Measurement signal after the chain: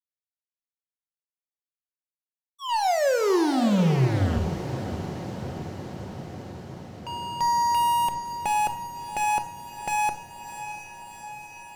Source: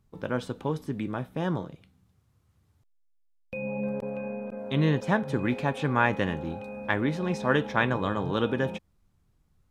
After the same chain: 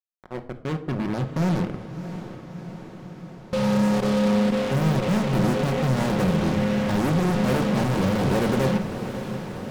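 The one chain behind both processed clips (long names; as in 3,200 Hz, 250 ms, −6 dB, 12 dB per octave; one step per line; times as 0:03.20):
fade in at the beginning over 2.97 s
Bessel low-pass filter 510 Hz, order 4
fuzz pedal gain 47 dB, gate −46 dBFS
on a send: feedback delay with all-pass diffusion 657 ms, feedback 71%, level −11 dB
on the sum: rectangular room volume 980 cubic metres, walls furnished, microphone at 1 metre
level −8.5 dB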